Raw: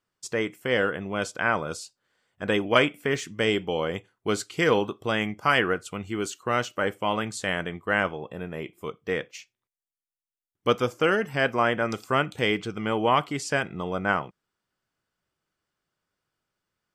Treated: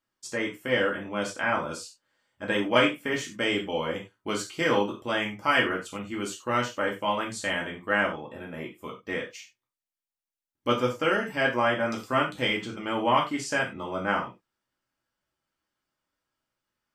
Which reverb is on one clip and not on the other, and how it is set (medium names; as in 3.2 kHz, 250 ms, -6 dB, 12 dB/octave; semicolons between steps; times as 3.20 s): gated-style reverb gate 120 ms falling, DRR -2 dB; trim -5 dB